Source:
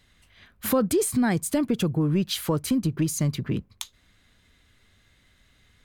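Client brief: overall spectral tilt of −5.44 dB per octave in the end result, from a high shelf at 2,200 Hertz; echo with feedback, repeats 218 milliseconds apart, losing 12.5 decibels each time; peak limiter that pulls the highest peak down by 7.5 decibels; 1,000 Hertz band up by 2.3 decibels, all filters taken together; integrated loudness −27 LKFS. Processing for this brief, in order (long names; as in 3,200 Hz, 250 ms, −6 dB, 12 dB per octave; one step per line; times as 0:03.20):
parametric band 1,000 Hz +3.5 dB
high-shelf EQ 2,200 Hz −3.5 dB
brickwall limiter −19 dBFS
repeating echo 218 ms, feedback 24%, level −12.5 dB
level +1 dB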